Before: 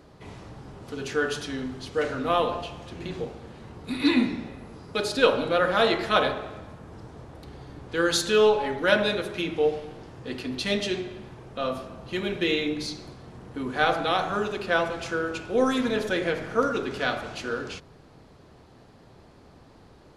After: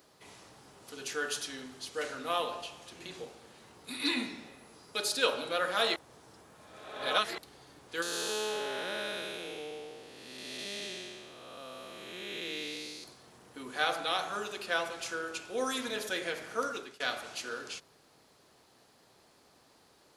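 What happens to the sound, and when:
5.96–7.38 s: reverse
8.02–13.04 s: spectral blur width 488 ms
16.59–17.00 s: fade out equal-power, to -24 dB
whole clip: RIAA curve recording; trim -8 dB

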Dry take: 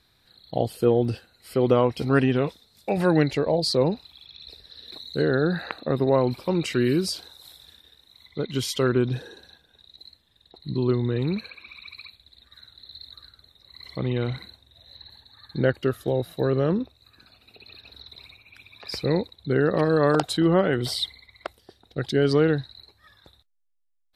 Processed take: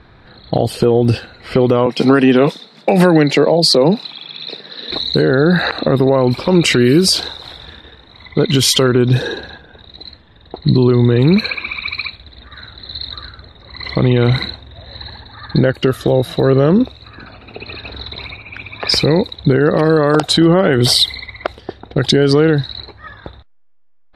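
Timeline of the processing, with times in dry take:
1.86–4.90 s: steep high-pass 150 Hz 48 dB/octave
whole clip: compression 12:1, threshold -28 dBFS; level-controlled noise filter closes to 1.5 kHz, open at -29 dBFS; loudness maximiser +24 dB; trim -1 dB

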